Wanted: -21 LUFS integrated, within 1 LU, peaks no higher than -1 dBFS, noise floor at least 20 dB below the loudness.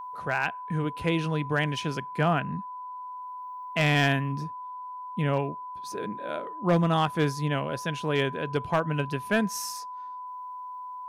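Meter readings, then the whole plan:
clipped 0.3%; flat tops at -16.0 dBFS; steady tone 1000 Hz; tone level -36 dBFS; loudness -28.0 LUFS; peak -16.0 dBFS; loudness target -21.0 LUFS
-> clip repair -16 dBFS; notch 1000 Hz, Q 30; gain +7 dB

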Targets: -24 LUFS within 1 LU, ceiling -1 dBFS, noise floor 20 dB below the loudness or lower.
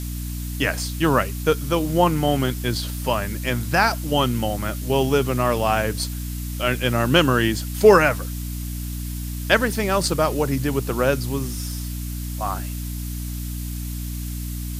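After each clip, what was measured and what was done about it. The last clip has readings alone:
hum 60 Hz; harmonics up to 300 Hz; hum level -26 dBFS; noise floor -29 dBFS; noise floor target -42 dBFS; loudness -22.0 LUFS; peak -1.5 dBFS; loudness target -24.0 LUFS
-> de-hum 60 Hz, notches 5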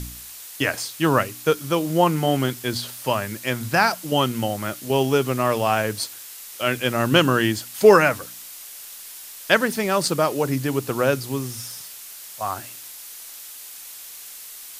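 hum none; noise floor -40 dBFS; noise floor target -42 dBFS
-> noise print and reduce 6 dB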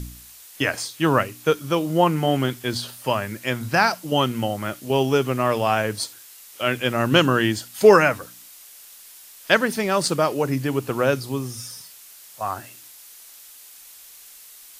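noise floor -46 dBFS; loudness -21.5 LUFS; peak -1.0 dBFS; loudness target -24.0 LUFS
-> gain -2.5 dB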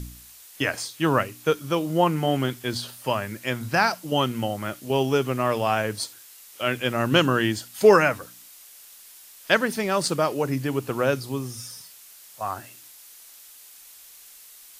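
loudness -24.0 LUFS; peak -3.5 dBFS; noise floor -48 dBFS

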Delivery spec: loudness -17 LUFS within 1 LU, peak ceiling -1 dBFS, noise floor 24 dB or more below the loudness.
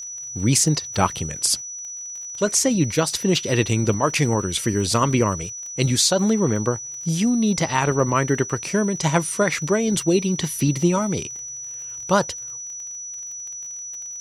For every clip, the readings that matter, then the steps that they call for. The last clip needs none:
ticks 31/s; steady tone 5900 Hz; tone level -31 dBFS; loudness -21.5 LUFS; peak -3.5 dBFS; loudness target -17.0 LUFS
-> de-click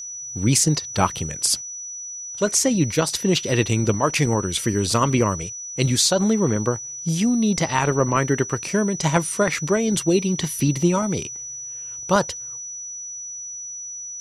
ticks 0/s; steady tone 5900 Hz; tone level -31 dBFS
-> notch 5900 Hz, Q 30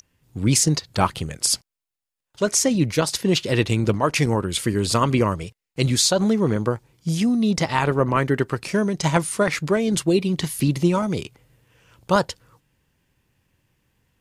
steady tone none; loudness -21.5 LUFS; peak -4.0 dBFS; loudness target -17.0 LUFS
-> gain +4.5 dB; limiter -1 dBFS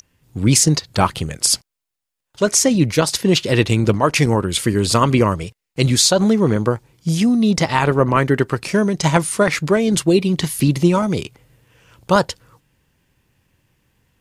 loudness -17.0 LUFS; peak -1.0 dBFS; noise floor -81 dBFS

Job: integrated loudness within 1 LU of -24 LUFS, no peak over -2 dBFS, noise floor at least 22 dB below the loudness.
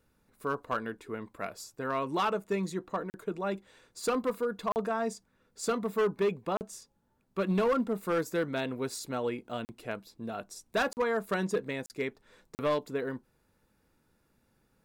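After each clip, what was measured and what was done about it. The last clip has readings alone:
clipped 1.0%; flat tops at -22.5 dBFS; dropouts 7; longest dropout 39 ms; loudness -33.0 LUFS; peak -22.5 dBFS; loudness target -24.0 LUFS
-> clip repair -22.5 dBFS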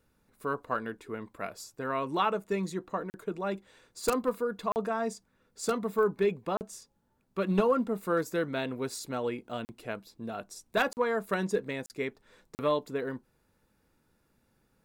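clipped 0.0%; dropouts 7; longest dropout 39 ms
-> interpolate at 3.1/4.72/6.57/9.65/10.93/11.86/12.55, 39 ms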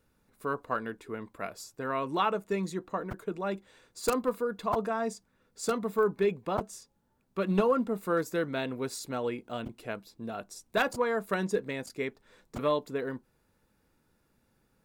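dropouts 0; loudness -32.5 LUFS; peak -13.5 dBFS; loudness target -24.0 LUFS
-> gain +8.5 dB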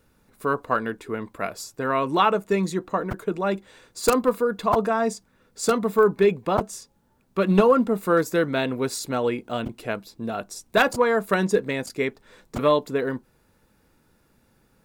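loudness -24.0 LUFS; peak -5.0 dBFS; noise floor -64 dBFS

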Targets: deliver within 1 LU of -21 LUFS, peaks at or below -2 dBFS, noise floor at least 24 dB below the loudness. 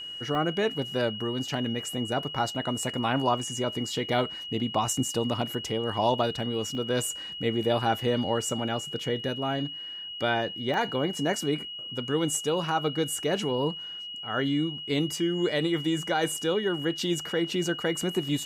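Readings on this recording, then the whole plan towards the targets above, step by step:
dropouts 4; longest dropout 1.1 ms; steady tone 2900 Hz; tone level -36 dBFS; loudness -28.5 LUFS; peak -12.0 dBFS; loudness target -21.0 LUFS
-> interpolate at 0.35/3.43/6.75/10.74, 1.1 ms; notch 2900 Hz, Q 30; gain +7.5 dB

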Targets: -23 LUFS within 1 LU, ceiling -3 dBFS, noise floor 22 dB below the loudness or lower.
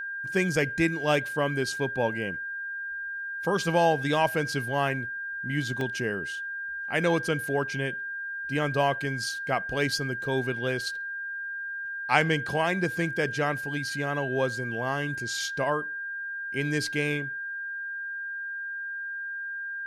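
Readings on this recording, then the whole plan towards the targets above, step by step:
dropouts 2; longest dropout 1.4 ms; steady tone 1600 Hz; tone level -32 dBFS; loudness -28.5 LUFS; peak -6.5 dBFS; loudness target -23.0 LUFS
-> interpolate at 5.81/12.21, 1.4 ms; notch 1600 Hz, Q 30; gain +5.5 dB; limiter -3 dBFS

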